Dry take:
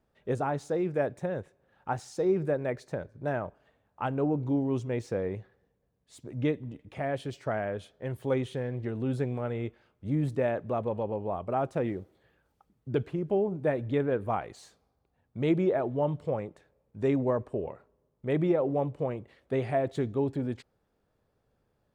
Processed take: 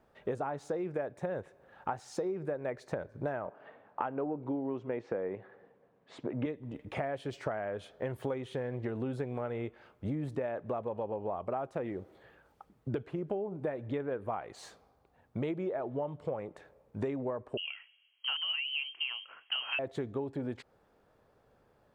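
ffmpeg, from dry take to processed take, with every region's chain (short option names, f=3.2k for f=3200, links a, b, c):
-filter_complex "[0:a]asettb=1/sr,asplit=3[a][b][c];[a]atrim=end=3.464[d];[b]atrim=start=3.46:end=6.46,asetpts=PTS-STARTPTS,afade=t=in:d=0.004:c=qsin,afade=t=out:st=2.996:d=0.004:c=qsin,highpass=180,lowpass=2.5k,acontrast=30[e];[c]atrim=start=6.456[f];[d][e]acrossfade=d=0.004:c1=hsin:c2=qsin[g];[g][f]acrossfade=d=0.004:c1=qsin:c2=hsin,asettb=1/sr,asplit=3[h][i][j];[h]atrim=end=17.574[k];[i]atrim=start=17.57:end=19.79,asetpts=PTS-STARTPTS,afade=t=in:d=0.004:c=qsin,afade=t=out:st=2.216:d=0.004:c=qsin,lowshelf=f=250:g=-7,lowpass=f=2.8k:t=q:w=0.5098,lowpass=f=2.8k:t=q:w=0.6013,lowpass=f=2.8k:t=q:w=0.9,lowpass=f=2.8k:t=q:w=2.563,afreqshift=-3300[l];[j]atrim=start=19.786[m];[k][l]acrossfade=d=0.004:c1=hsin:c2=qsin[n];[n][m]acrossfade=d=0.004:c1=qsin:c2=hsin,equalizer=f=930:w=0.34:g=8.5,acompressor=threshold=-34dB:ratio=12,volume=2dB"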